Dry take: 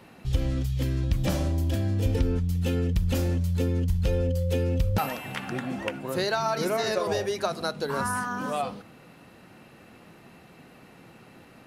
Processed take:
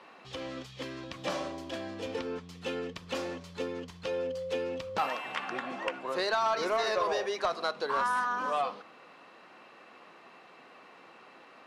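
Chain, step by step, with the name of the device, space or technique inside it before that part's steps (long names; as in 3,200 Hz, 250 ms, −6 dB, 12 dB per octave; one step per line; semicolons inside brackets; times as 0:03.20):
intercom (band-pass filter 460–4,900 Hz; parametric band 1,100 Hz +8 dB 0.23 octaves; soft clipping −20 dBFS, distortion −18 dB)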